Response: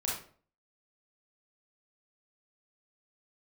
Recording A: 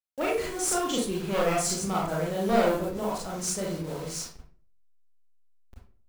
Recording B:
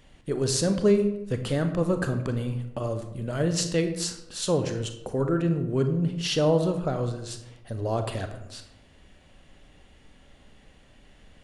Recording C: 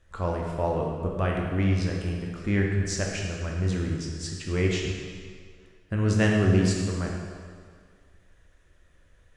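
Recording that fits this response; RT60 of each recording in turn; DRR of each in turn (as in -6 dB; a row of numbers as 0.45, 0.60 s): A; 0.45, 0.85, 2.0 s; -5.0, 7.0, -1.0 dB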